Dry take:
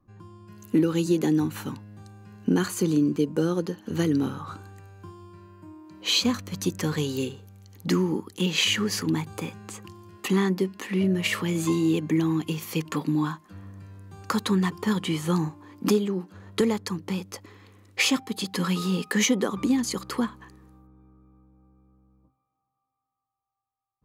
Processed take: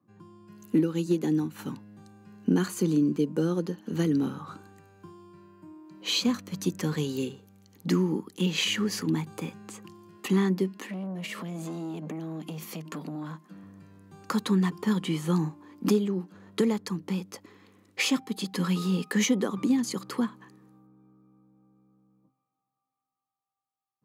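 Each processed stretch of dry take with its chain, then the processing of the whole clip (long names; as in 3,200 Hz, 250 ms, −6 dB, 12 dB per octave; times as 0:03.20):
0:00.80–0:01.59: hard clipping −13 dBFS + expander for the loud parts, over −30 dBFS
0:10.84–0:13.63: low shelf with overshoot 110 Hz −13 dB, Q 1.5 + downward compressor 8 to 1, threshold −28 dBFS + saturating transformer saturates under 1,200 Hz
whole clip: high-pass filter 150 Hz 24 dB per octave; low-shelf EQ 210 Hz +8.5 dB; level −4.5 dB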